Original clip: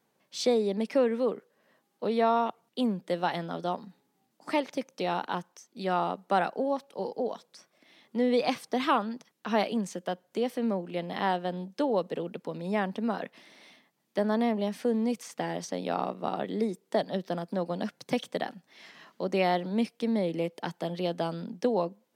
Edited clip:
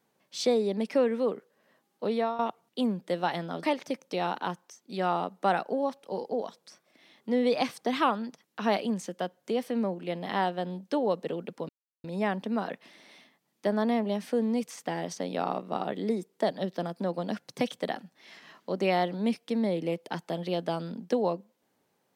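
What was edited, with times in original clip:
2.12–2.39 s: fade out, to -14.5 dB
3.63–4.50 s: delete
12.56 s: insert silence 0.35 s

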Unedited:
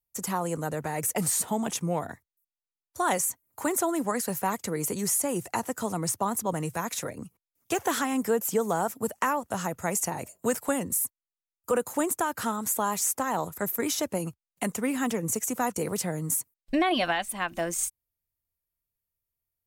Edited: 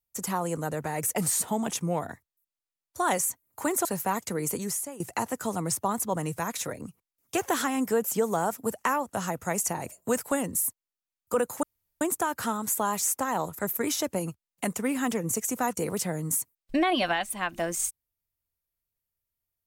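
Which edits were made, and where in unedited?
3.85–4.22 s: delete
4.89–5.37 s: fade out, to -18.5 dB
12.00 s: insert room tone 0.38 s

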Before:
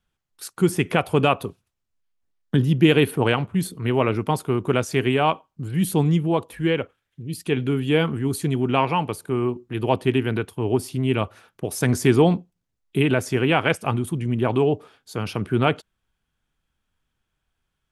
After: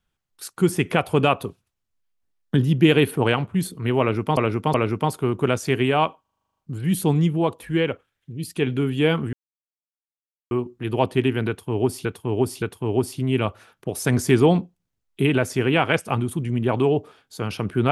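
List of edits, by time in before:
4.00–4.37 s: loop, 3 plays
5.47 s: stutter 0.04 s, 10 plays
8.23–9.41 s: mute
10.38–10.95 s: loop, 3 plays

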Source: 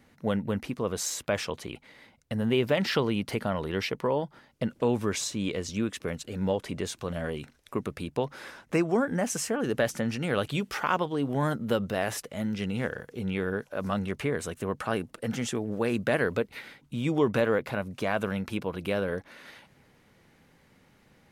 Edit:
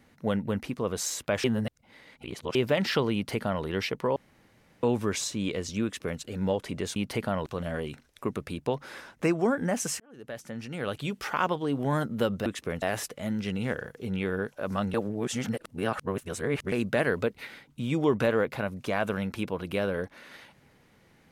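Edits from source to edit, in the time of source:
1.44–2.55 s: reverse
3.14–3.64 s: copy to 6.96 s
4.16–4.83 s: room tone
5.84–6.20 s: copy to 11.96 s
9.50–10.99 s: fade in
14.08–15.86 s: reverse

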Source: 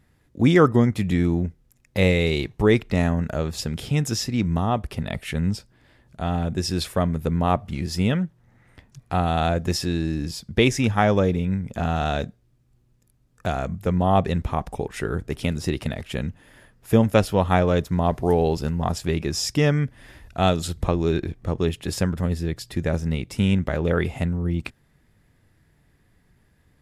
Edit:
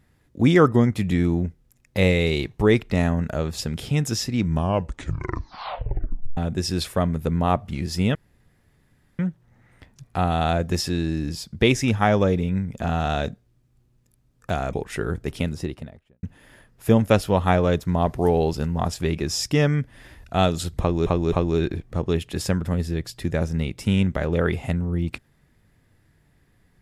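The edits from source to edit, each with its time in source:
4.45 s: tape stop 1.92 s
8.15 s: insert room tone 1.04 s
13.69–14.77 s: delete
15.30–16.27 s: studio fade out
20.84–21.10 s: loop, 3 plays

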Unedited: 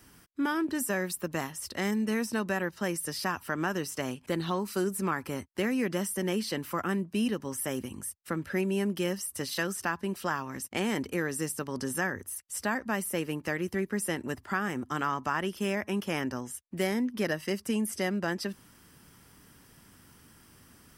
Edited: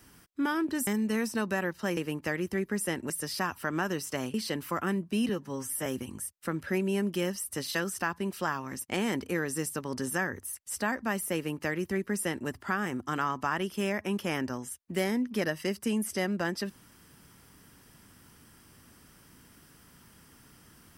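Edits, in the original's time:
0.87–1.85 s: delete
4.19–6.36 s: delete
7.31–7.69 s: stretch 1.5×
13.18–14.31 s: copy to 2.95 s

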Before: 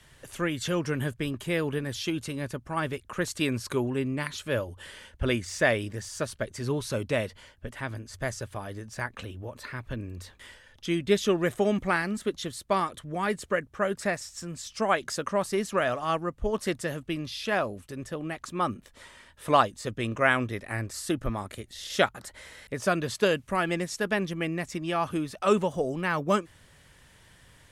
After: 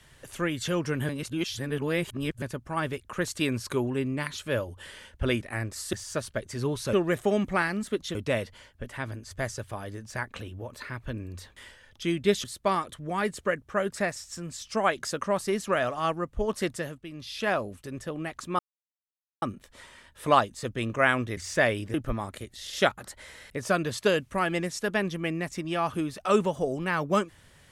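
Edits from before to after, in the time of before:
1.09–2.42 s: reverse
5.41–5.98 s: swap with 20.59–21.11 s
11.27–12.49 s: move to 6.98 s
16.78–17.47 s: dip -10.5 dB, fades 0.33 s
18.64 s: insert silence 0.83 s

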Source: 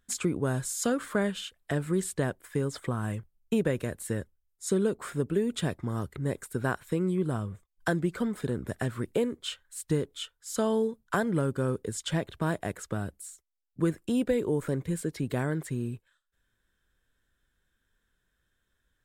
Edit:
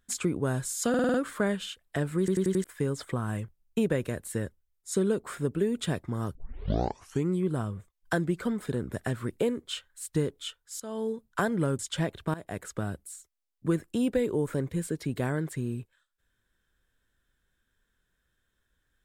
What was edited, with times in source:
0.89 s: stutter 0.05 s, 6 plays
1.94 s: stutter in place 0.09 s, 5 plays
6.10 s: tape start 0.97 s
10.55–11.02 s: fade in, from -19 dB
11.54–11.93 s: delete
12.48–12.78 s: fade in, from -18 dB

